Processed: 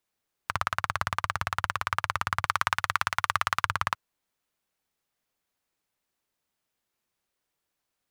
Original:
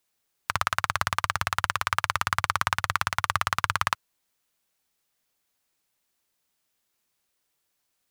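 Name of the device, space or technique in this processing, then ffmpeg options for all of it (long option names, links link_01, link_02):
behind a face mask: -filter_complex "[0:a]asettb=1/sr,asplit=3[link_01][link_02][link_03];[link_01]atrim=end=2.454[link_04];[link_02]atrim=start=2.45:end=3.65,asetpts=PTS-STARTPTS,afade=type=in:duration=0.004:curve=qsin,afade=type=out:start_time=1.196:duration=0.004:curve=qsin,tiltshelf=frequency=740:gain=-4.5[link_05];[link_03]atrim=start=3.646[link_06];[link_04][link_05]acrossfade=duration=0.004:curve1=hsin:curve2=qsin[link_07];[link_07][link_06]acrossfade=duration=0.004:curve1=qsin:curve2=hsin,highshelf=frequency=2900:gain=-7,volume=-1.5dB"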